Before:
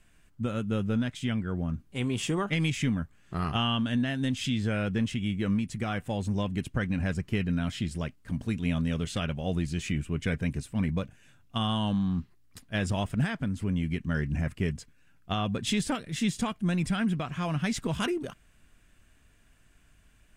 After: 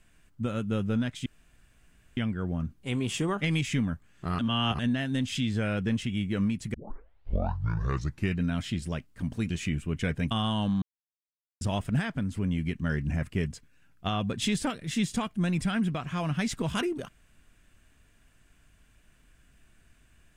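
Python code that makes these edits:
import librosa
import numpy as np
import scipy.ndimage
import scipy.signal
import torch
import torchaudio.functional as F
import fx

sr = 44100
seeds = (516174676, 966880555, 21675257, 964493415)

y = fx.edit(x, sr, fx.insert_room_tone(at_s=1.26, length_s=0.91),
    fx.reverse_span(start_s=3.48, length_s=0.4),
    fx.tape_start(start_s=5.83, length_s=1.66),
    fx.cut(start_s=8.59, length_s=1.14),
    fx.cut(start_s=10.54, length_s=1.02),
    fx.silence(start_s=12.07, length_s=0.79), tone=tone)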